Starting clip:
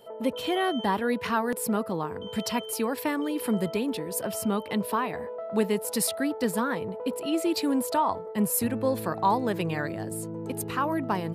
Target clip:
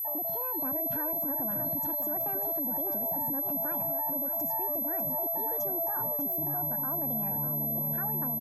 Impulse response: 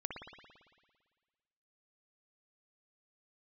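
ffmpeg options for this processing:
-af "firequalizer=gain_entry='entry(310,0);entry(2000,-25);entry(6400,-16)':delay=0.05:min_phase=1,asetrate=59535,aresample=44100,equalizer=f=170:w=7.4:g=11,aecho=1:1:1.2:0.83,acompressor=threshold=0.0355:ratio=12,alimiter=level_in=3.16:limit=0.0631:level=0:latency=1:release=35,volume=0.316,acontrast=52,aeval=exprs='val(0)+0.0398*sin(2*PI*12000*n/s)':c=same,asoftclip=type=tanh:threshold=0.106,aecho=1:1:598:0.398,anlmdn=2.51,volume=0.794"

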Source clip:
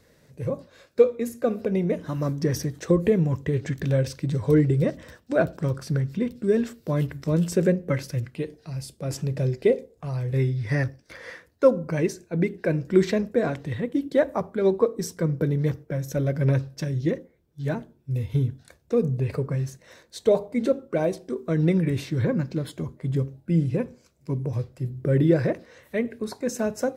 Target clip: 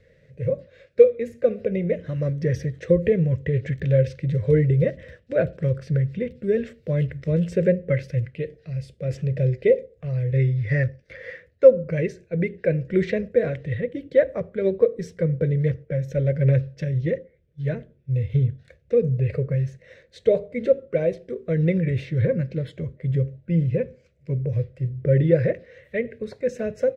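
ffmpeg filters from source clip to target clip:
-af "firequalizer=gain_entry='entry(130,0);entry(280,-13);entry(520,3);entry(840,-22);entry(1900,0);entry(4600,-14);entry(12000,-27)':delay=0.05:min_phase=1,volume=1.58"

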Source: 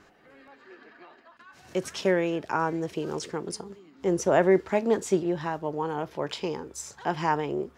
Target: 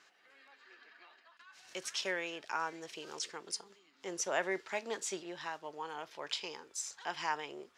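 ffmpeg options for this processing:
-af "bandpass=f=4600:t=q:w=0.61:csg=0"

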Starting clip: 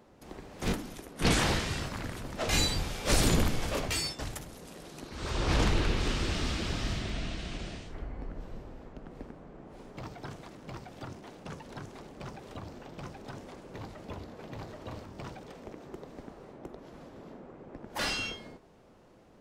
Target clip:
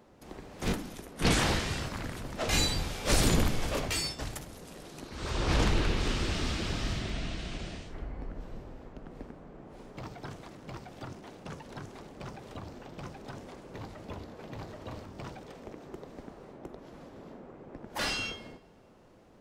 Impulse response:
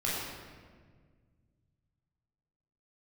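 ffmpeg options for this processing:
-filter_complex "[0:a]asplit=2[s0][s1];[1:a]atrim=start_sample=2205,adelay=38[s2];[s1][s2]afir=irnorm=-1:irlink=0,volume=0.0422[s3];[s0][s3]amix=inputs=2:normalize=0"

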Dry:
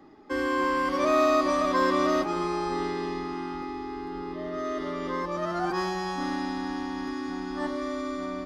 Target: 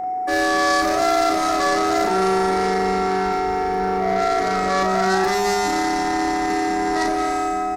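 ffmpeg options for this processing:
-filter_complex "[0:a]dynaudnorm=f=100:g=11:m=2.24,equalizer=f=1200:t=o:w=1.7:g=-5.5,acontrast=89,highshelf=f=2600:t=q:w=3:g=-13.5,alimiter=limit=0.251:level=0:latency=1:release=32,asoftclip=type=tanh:threshold=0.119,aexciter=amount=9.5:drive=5.3:freq=4100,aeval=exprs='val(0)+0.0631*sin(2*PI*680*n/s)':c=same,asplit=2[s0][s1];[s1]adelay=40,volume=0.631[s2];[s0][s2]amix=inputs=2:normalize=0,asetrate=48000,aresample=44100"

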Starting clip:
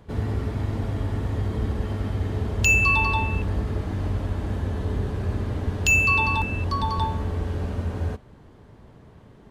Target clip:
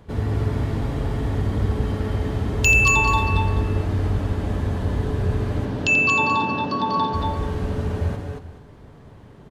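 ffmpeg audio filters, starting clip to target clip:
-filter_complex "[0:a]asettb=1/sr,asplit=3[s0][s1][s2];[s0]atrim=end=5.654[s3];[s1]atrim=start=5.65:end=7.14,asetpts=PTS-STARTPTS,afade=t=in:d=0.004:c=qsin,afade=t=out:st=1.486:d=0.004:c=qsin,highpass=f=140:w=0.5412,highpass=f=140:w=1.3066,equalizer=f=270:t=q:w=4:g=6,equalizer=f=590:t=q:w=4:g=4,equalizer=f=2100:t=q:w=4:g=-7,lowpass=f=5400:w=0.5412,lowpass=f=5400:w=1.3066[s4];[s2]atrim=start=7.136[s5];[s3][s4]acrossfade=d=0.004:c1=hsin:c2=qsin[s6];[s6][s5]acrossfade=d=0.004:c1=qsin:c2=hsin,aecho=1:1:86|224|231|431:0.299|0.398|0.531|0.168,volume=1.26"

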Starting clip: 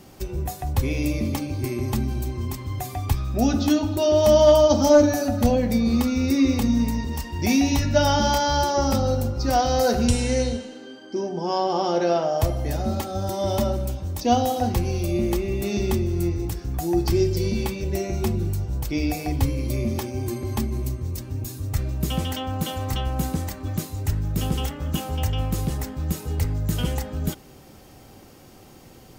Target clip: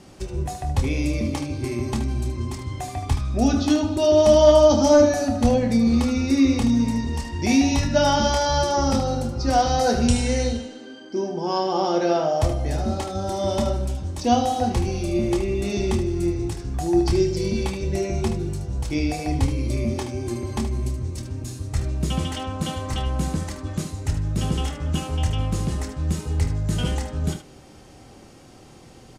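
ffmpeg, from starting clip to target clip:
-af "lowpass=f=10000:w=0.5412,lowpass=f=10000:w=1.3066,aecho=1:1:26|75:0.355|0.335"

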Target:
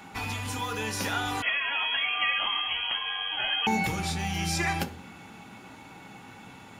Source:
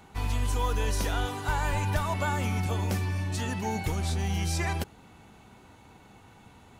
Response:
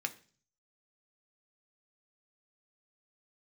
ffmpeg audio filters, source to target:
-filter_complex "[0:a]acompressor=threshold=0.0355:ratio=6[s0];[1:a]atrim=start_sample=2205[s1];[s0][s1]afir=irnorm=-1:irlink=0,asettb=1/sr,asplit=3[s2][s3][s4];[s2]atrim=end=1.424[s5];[s3]atrim=start=1.42:end=3.67,asetpts=PTS-STARTPTS,afade=t=in:d=0.004:c=qsin,afade=t=out:st=2.246:d=0.004:c=qsin,lowpass=f=2900:t=q:w=0.5098,lowpass=f=2900:t=q:w=0.6013,lowpass=f=2900:t=q:w=0.9,lowpass=f=2900:t=q:w=2.563,afreqshift=-3400[s6];[s4]atrim=start=3.666[s7];[s5][s6]acrossfade=d=0.004:c1=hsin:c2=qsin[s8];[s8][s7]acrossfade=d=0.004:c1=qsin:c2=hsin,volume=2.24"

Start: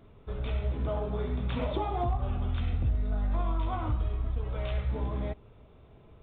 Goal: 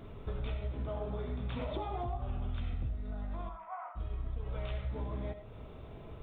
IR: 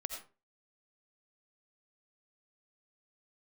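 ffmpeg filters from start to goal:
-filter_complex "[0:a]acompressor=threshold=0.00794:ratio=6,asplit=3[s0][s1][s2];[s0]afade=t=out:st=3.48:d=0.02[s3];[s1]asuperpass=centerf=1200:order=8:qfactor=0.78,afade=t=in:st=3.48:d=0.02,afade=t=out:st=3.95:d=0.02[s4];[s2]afade=t=in:st=3.95:d=0.02[s5];[s3][s4][s5]amix=inputs=3:normalize=0,asplit=2[s6][s7];[1:a]atrim=start_sample=2205[s8];[s7][s8]afir=irnorm=-1:irlink=0,volume=1.06[s9];[s6][s9]amix=inputs=2:normalize=0,volume=1.19"

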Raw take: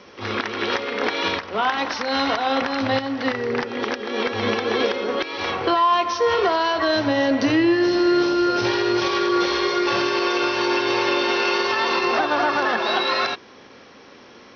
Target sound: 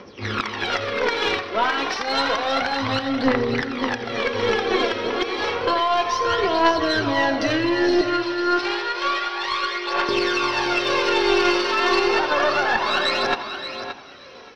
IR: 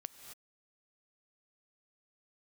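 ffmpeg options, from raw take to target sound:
-filter_complex "[0:a]aphaser=in_gain=1:out_gain=1:delay=3.2:decay=0.63:speed=0.3:type=triangular,asettb=1/sr,asplit=3[s0][s1][s2];[s0]atrim=end=8.014[s3];[s1]atrim=start=8.01:end=10.09,asetpts=PTS-STARTPTS,afade=t=in:d=0.004:c=qsin,afade=t=out:st=2.076:d=0.004:c=qsin,highpass=780,lowpass=4000[s4];[s2]atrim=start=10.086[s5];[s3][s4]acrossfade=d=0.004:c1=hsin:c2=qsin[s6];[s6][s5]acrossfade=d=0.004:c1=qsin:c2=hsin,aecho=1:1:574|1148:0.335|0.0536,asplit=2[s7][s8];[1:a]atrim=start_sample=2205,asetrate=23373,aresample=44100,adelay=85[s9];[s8][s9]afir=irnorm=-1:irlink=0,volume=0.251[s10];[s7][s10]amix=inputs=2:normalize=0,aeval=exprs='0.75*(cos(1*acos(clip(val(0)/0.75,-1,1)))-cos(1*PI/2))+0.211*(cos(2*acos(clip(val(0)/0.75,-1,1)))-cos(2*PI/2))':c=same,volume=0.794"

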